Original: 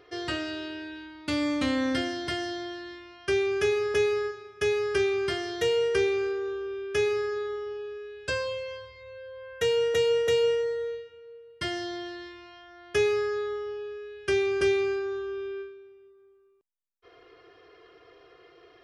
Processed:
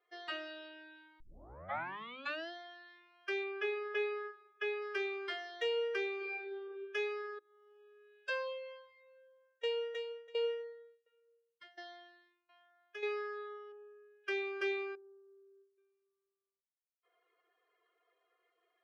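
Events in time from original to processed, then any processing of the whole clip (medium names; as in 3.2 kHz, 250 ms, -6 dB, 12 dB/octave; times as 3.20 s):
1.20 s: tape start 1.31 s
3.44–4.82 s: low-pass 4.1 kHz
6.16–6.63 s: reverb throw, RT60 1.2 s, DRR -3.5 dB
7.39–8.20 s: fade in, from -22.5 dB
8.92–13.03 s: tremolo saw down 1.4 Hz, depth 90%
13.72–14.24 s: low-pass 1.6 kHz
14.95–15.78 s: ladder band-pass 450 Hz, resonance 40%
whole clip: expander on every frequency bin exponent 1.5; three-band isolator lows -23 dB, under 450 Hz, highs -22 dB, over 3.9 kHz; hum notches 50/100/150/200/250/300/350 Hz; trim -4 dB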